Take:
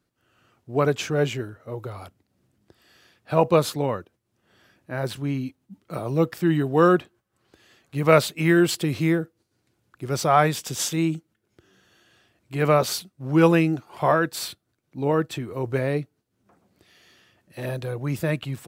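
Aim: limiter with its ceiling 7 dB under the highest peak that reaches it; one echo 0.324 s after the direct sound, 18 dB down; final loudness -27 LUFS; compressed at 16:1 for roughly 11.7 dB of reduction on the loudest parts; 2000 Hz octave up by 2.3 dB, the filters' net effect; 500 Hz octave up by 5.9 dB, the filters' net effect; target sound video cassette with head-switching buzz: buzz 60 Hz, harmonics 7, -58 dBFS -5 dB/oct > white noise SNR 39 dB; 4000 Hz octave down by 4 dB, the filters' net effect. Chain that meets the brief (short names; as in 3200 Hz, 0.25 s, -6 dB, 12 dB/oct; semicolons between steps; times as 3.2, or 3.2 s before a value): bell 500 Hz +7 dB; bell 2000 Hz +4 dB; bell 4000 Hz -6.5 dB; compressor 16:1, threshold -18 dBFS; limiter -15 dBFS; echo 0.324 s -18 dB; buzz 60 Hz, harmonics 7, -58 dBFS -5 dB/oct; white noise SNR 39 dB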